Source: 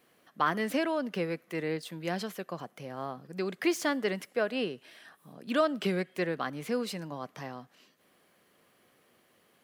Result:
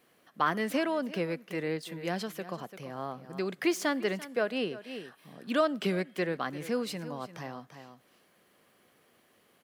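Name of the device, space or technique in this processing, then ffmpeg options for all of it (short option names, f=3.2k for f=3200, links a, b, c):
ducked delay: -filter_complex "[0:a]asplit=3[a][b][c];[b]adelay=341,volume=-9dB[d];[c]apad=whole_len=440013[e];[d][e]sidechaincompress=threshold=-41dB:ratio=8:attack=31:release=258[f];[a][f]amix=inputs=2:normalize=0"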